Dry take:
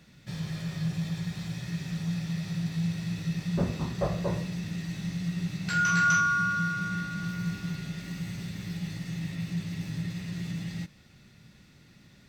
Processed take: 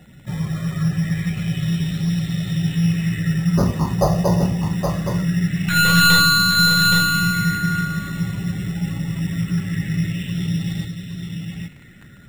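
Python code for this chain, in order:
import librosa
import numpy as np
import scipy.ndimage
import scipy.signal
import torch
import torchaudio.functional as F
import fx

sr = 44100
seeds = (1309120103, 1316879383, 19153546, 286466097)

y = fx.tracing_dist(x, sr, depth_ms=0.11)
y = fx.low_shelf(y, sr, hz=210.0, db=4.0)
y = fx.notch(y, sr, hz=4500.0, q=16.0)
y = fx.spec_topn(y, sr, count=64)
y = fx.dmg_crackle(y, sr, seeds[0], per_s=51.0, level_db=-48.0)
y = y + 10.0 ** (-5.5 / 20.0) * np.pad(y, (int(820 * sr / 1000.0), 0))[:len(y)]
y = np.repeat(y[::8], 8)[:len(y)]
y = fx.bell_lfo(y, sr, hz=0.23, low_hz=790.0, high_hz=4000.0, db=9)
y = y * librosa.db_to_amplitude(8.0)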